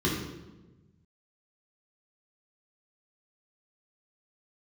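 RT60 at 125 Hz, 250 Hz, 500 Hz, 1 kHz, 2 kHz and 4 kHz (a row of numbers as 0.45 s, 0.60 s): 1.9 s, 1.5 s, 1.3 s, 1.0 s, 0.85 s, 0.80 s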